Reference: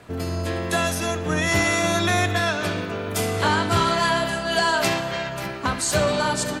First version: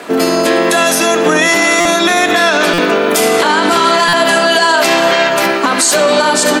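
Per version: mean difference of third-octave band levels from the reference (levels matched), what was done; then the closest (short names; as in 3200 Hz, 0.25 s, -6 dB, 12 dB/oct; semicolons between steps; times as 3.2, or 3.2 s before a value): 5.5 dB: HPF 240 Hz 24 dB/oct; compressor, threshold -23 dBFS, peak gain reduction 7 dB; maximiser +20.5 dB; stuck buffer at 1.8/2.73/4.08, samples 256, times 8; gain -1 dB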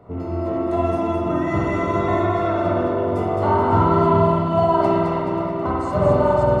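11.5 dB: rattling part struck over -27 dBFS, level -30 dBFS; polynomial smoothing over 65 samples; on a send: split-band echo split 620 Hz, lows 0.413 s, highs 0.214 s, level -4 dB; on the sum: spring tank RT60 1.2 s, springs 48 ms, chirp 75 ms, DRR -2.5 dB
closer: first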